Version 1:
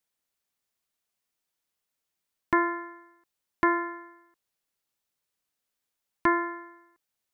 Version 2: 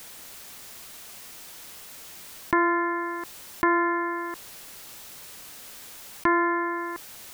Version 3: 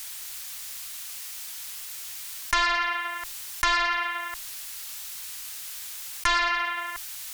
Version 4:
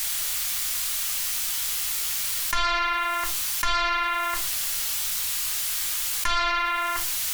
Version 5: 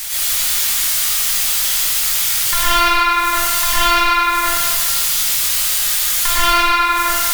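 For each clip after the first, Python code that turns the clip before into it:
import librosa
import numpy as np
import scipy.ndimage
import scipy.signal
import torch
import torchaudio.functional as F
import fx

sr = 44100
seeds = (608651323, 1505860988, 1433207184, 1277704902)

y1 = fx.env_flatten(x, sr, amount_pct=70)
y2 = fx.cheby_harmonics(y1, sr, harmonics=(8,), levels_db=(-17,), full_scale_db=-9.0)
y2 = fx.tone_stack(y2, sr, knobs='10-0-10')
y2 = y2 * librosa.db_to_amplitude(7.0)
y3 = fx.room_shoebox(y2, sr, seeds[0], volume_m3=130.0, walls='furnished', distance_m=1.3)
y3 = fx.env_flatten(y3, sr, amount_pct=70)
y3 = y3 * librosa.db_to_amplitude(-6.0)
y4 = fx.rev_plate(y3, sr, seeds[1], rt60_s=1.5, hf_ratio=0.9, predelay_ms=85, drr_db=-8.5)
y4 = y4 * librosa.db_to_amplitude(2.0)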